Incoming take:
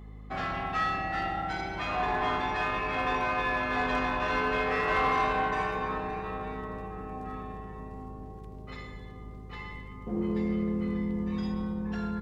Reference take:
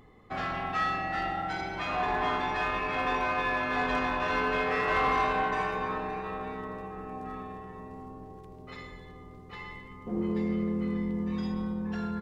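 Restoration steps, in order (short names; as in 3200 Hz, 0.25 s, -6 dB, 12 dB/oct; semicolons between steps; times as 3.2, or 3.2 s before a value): de-hum 52.5 Hz, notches 5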